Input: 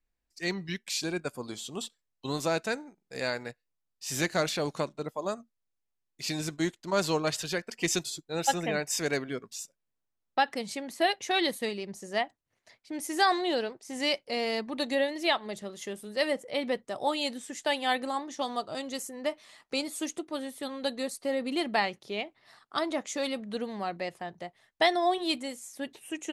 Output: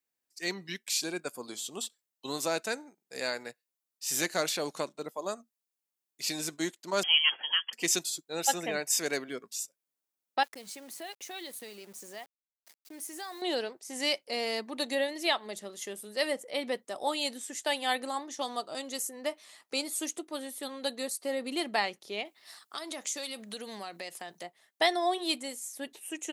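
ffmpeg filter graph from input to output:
-filter_complex "[0:a]asettb=1/sr,asplit=3[s0][s1][s2];[s0]atrim=end=7.034[s3];[s1]atrim=start=7.03:end=7.73,asetpts=PTS-STARTPTS,afade=t=in:d=0.004:c=qsin,afade=t=out:st=0.696:d=0.004:c=qsin,lowpass=f=2900:t=q:w=0.5098,lowpass=f=2900:t=q:w=0.6013,lowpass=f=2900:t=q:w=0.9,lowpass=f=2900:t=q:w=2.563,afreqshift=-3400,aemphasis=mode=production:type=riaa[s4];[s2]atrim=start=7.726[s5];[s3][s4]acrossfade=d=0.004:c1=hsin:c2=qsin[s6];[s6][s5]acrossfade=d=0.004:c1=qsin:c2=hsin,asettb=1/sr,asplit=3[s7][s8][s9];[s7]atrim=end=10.434[s10];[s8]atrim=start=10.43:end=13.42,asetpts=PTS-STARTPTS,afade=t=in:d=0.004:c=qsin,afade=t=out:st=2.986:d=0.004:c=qsin,highpass=f=53:w=0.5412,highpass=f=53:w=1.3066,acompressor=threshold=0.00631:ratio=2.5:attack=3.2:release=140:knee=1:detection=peak,aeval=exprs='val(0)*gte(abs(val(0)),0.00266)':c=same[s11];[s9]atrim=start=13.416[s12];[s10][s11]acrossfade=d=0.004:c1=hsin:c2=qsin[s13];[s13][s12]acrossfade=d=0.004:c1=qsin:c2=hsin,asettb=1/sr,asplit=3[s14][s15][s16];[s14]atrim=end=22.254[s17];[s15]atrim=start=22.25:end=24.43,asetpts=PTS-STARTPTS,afade=t=in:d=0.004:c=qsin,afade=t=out:st=2.176:d=0.004:c=qsin,highpass=56,highshelf=f=2400:g=11,acompressor=threshold=0.02:ratio=5:attack=3.2:release=140:knee=1:detection=peak[s18];[s16]atrim=start=24.426[s19];[s17][s18]acrossfade=d=0.004:c1=hsin:c2=qsin[s20];[s20][s19]acrossfade=d=0.004:c1=qsin:c2=hsin,highpass=240,highshelf=f=6500:g=11.5,volume=0.75"

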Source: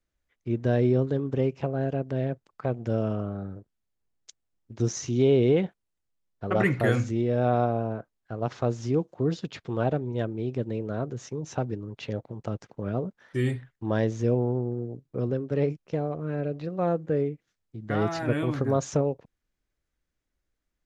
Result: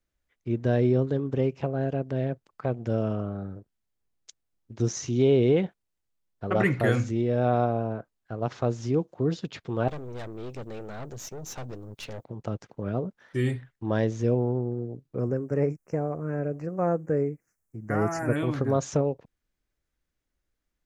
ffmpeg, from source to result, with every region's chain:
-filter_complex "[0:a]asettb=1/sr,asplit=3[s0][s1][s2];[s0]atrim=end=9.884[s3];[s1]atrim=start=9.88:end=12.25,asetpts=PTS-STARTPTS,afade=t=in:d=0.004:c=qsin,afade=t=out:st=2.366:d=0.004:c=qsin,aemphasis=mode=production:type=75kf,aeval=exprs='(tanh(50.1*val(0)+0.6)-tanh(0.6))/50.1':c=same[s4];[s2]atrim=start=12.246[s5];[s3][s4]acrossfade=d=0.004:c1=hsin:c2=qsin[s6];[s6][s5]acrossfade=d=0.004:c1=qsin:c2=hsin,asettb=1/sr,asplit=3[s7][s8][s9];[s7]atrim=end=15.194[s10];[s8]atrim=start=15.19:end=18.36,asetpts=PTS-STARTPTS,afade=t=in:d=0.004:c=qsin,afade=t=out:st=3.166:d=0.004:c=qsin,asuperstop=centerf=3600:order=4:qfactor=0.76,highshelf=f=3000:g=11[s11];[s9]atrim=start=18.356[s12];[s10][s11]acrossfade=d=0.004:c1=hsin:c2=qsin[s13];[s13][s12]acrossfade=d=0.004:c1=qsin:c2=hsin"

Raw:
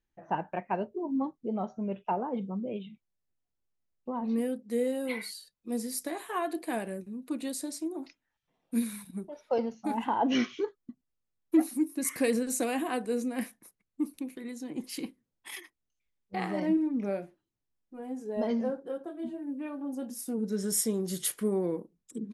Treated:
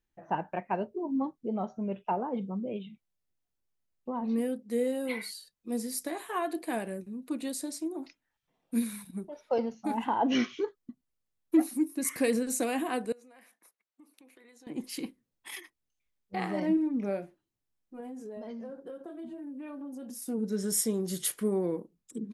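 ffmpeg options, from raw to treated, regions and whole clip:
-filter_complex "[0:a]asettb=1/sr,asplit=3[s0][s1][s2];[s0]atrim=end=13.124[s3];[s1]atrim=start=13.12:end=14.67,asetpts=PTS-STARTPTS,afade=t=in:d=0.004:c=qsin,afade=t=out:st=1.546:d=0.004:c=qsin,highpass=590,highshelf=f=4300:g=-7.5,acompressor=threshold=0.002:ratio=6:attack=3.2:release=140:knee=1:detection=peak[s4];[s2]atrim=start=14.666[s5];[s3][s4]acrossfade=d=0.004:c1=hsin:c2=qsin[s6];[s6][s5]acrossfade=d=0.004:c1=qsin:c2=hsin,asettb=1/sr,asplit=3[s7][s8][s9];[s7]atrim=end=18.004[s10];[s8]atrim=start=18:end=20.22,asetpts=PTS-STARTPTS,afade=t=in:d=0.004:c=qsin,afade=t=out:st=2.216:d=0.004:c=qsin,bandreject=f=810:w=15,acompressor=threshold=0.0126:ratio=8:attack=3.2:release=140:knee=1:detection=peak[s11];[s9]atrim=start=20.216[s12];[s10][s11]acrossfade=d=0.004:c1=hsin:c2=qsin[s13];[s13][s12]acrossfade=d=0.004:c1=qsin:c2=hsin"

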